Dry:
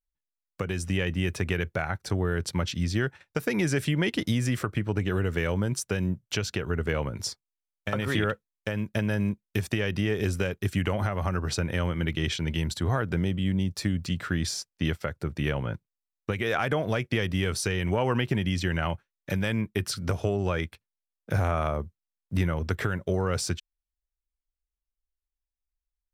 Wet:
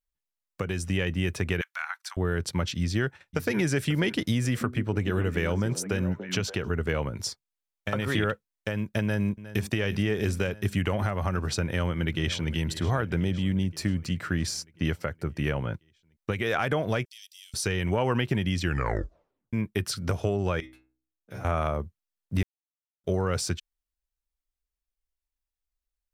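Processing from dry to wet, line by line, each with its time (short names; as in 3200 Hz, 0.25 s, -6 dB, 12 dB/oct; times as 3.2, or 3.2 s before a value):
1.61–2.17 steep high-pass 1000 Hz
2.79–3.58 echo throw 0.54 s, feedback 30%, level -13 dB
4.32–6.7 delay with a stepping band-pass 0.288 s, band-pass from 260 Hz, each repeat 1.4 oct, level -5 dB
9.01–9.66 echo throw 0.36 s, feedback 80%, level -15 dB
11.62–12.52 echo throw 0.52 s, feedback 65%, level -15 dB
13.64–15.61 bell 3500 Hz -7 dB 0.27 oct
17.05–17.54 inverse Chebyshev high-pass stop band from 740 Hz, stop band 80 dB
18.62 tape stop 0.91 s
20.6–21.45 metallic resonator 62 Hz, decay 0.53 s, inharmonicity 0.002
22.43–23.04 mute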